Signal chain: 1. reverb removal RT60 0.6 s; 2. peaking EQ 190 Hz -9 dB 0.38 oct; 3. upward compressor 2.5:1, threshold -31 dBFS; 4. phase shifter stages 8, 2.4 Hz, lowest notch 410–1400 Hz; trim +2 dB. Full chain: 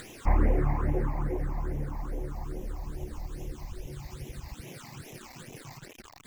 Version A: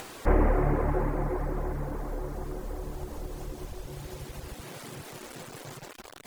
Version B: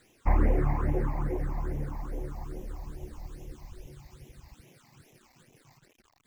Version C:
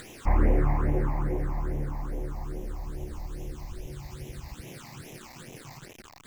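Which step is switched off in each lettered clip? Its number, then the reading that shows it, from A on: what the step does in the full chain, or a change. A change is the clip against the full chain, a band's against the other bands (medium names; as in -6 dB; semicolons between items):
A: 4, 125 Hz band -4.0 dB; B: 3, momentary loudness spread change +4 LU; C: 1, loudness change +2.0 LU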